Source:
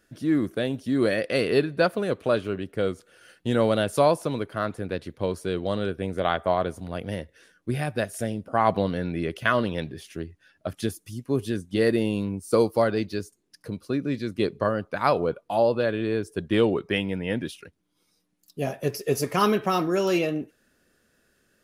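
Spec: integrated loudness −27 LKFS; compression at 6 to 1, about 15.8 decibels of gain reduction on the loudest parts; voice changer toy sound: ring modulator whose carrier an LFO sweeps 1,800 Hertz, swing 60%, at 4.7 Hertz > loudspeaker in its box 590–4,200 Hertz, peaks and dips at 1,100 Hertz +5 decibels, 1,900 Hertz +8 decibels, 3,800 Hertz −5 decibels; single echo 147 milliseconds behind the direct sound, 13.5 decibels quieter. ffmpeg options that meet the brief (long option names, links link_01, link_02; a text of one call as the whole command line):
ffmpeg -i in.wav -af "acompressor=threshold=-33dB:ratio=6,aecho=1:1:147:0.211,aeval=exprs='val(0)*sin(2*PI*1800*n/s+1800*0.6/4.7*sin(2*PI*4.7*n/s))':channel_layout=same,highpass=590,equalizer=frequency=1100:width_type=q:width=4:gain=5,equalizer=frequency=1900:width_type=q:width=4:gain=8,equalizer=frequency=3800:width_type=q:width=4:gain=-5,lowpass=frequency=4200:width=0.5412,lowpass=frequency=4200:width=1.3066,volume=9dB" out.wav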